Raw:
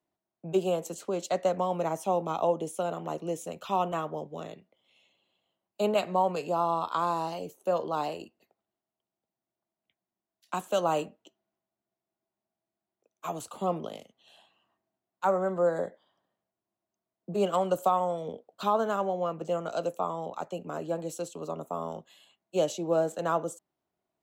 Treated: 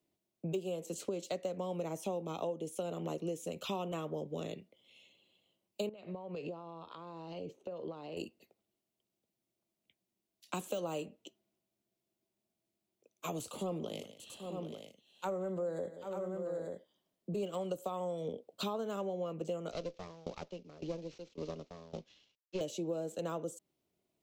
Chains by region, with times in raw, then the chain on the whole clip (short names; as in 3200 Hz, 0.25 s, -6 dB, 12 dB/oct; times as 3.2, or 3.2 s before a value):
5.89–8.17 compressor 20:1, threshold -39 dBFS + air absorption 210 m
13.41–17.43 transient shaper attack -5 dB, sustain +2 dB + tapped delay 0.176/0.787/0.888 s -18/-15/-12.5 dB
19.71–22.61 CVSD 32 kbps + tube stage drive 24 dB, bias 0.6 + dB-ramp tremolo decaying 1.8 Hz, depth 20 dB
whole clip: de-esser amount 95%; band shelf 1100 Hz -9 dB; compressor 6:1, threshold -39 dBFS; gain +4 dB